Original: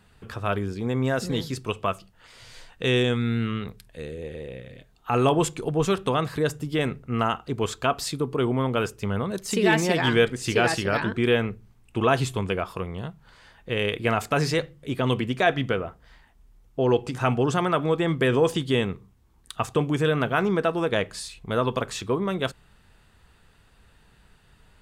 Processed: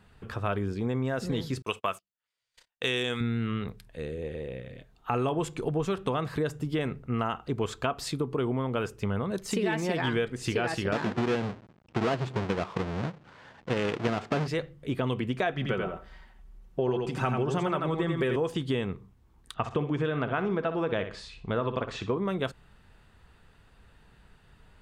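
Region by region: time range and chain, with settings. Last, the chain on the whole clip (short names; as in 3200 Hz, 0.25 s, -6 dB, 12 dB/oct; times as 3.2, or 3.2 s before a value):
1.62–3.21 gate -42 dBFS, range -39 dB + tilt +3 dB/oct
10.92–14.48 half-waves squared off + HPF 130 Hz + air absorption 110 m
15.53–18.36 comb 5.3 ms, depth 47% + feedback echo 87 ms, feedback 15%, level -5 dB
19.54–22.18 LPF 4300 Hz + flutter echo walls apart 10.5 m, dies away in 0.32 s
whole clip: high shelf 3900 Hz -7.5 dB; compressor 5:1, threshold -25 dBFS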